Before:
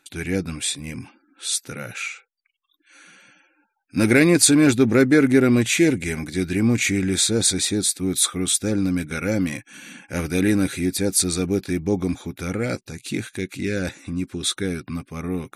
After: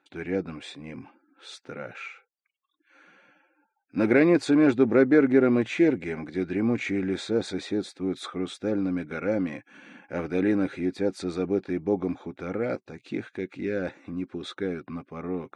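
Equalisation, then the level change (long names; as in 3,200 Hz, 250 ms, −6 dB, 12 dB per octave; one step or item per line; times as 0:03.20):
resonant band-pass 630 Hz, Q 0.72
high-frequency loss of the air 78 metres
0.0 dB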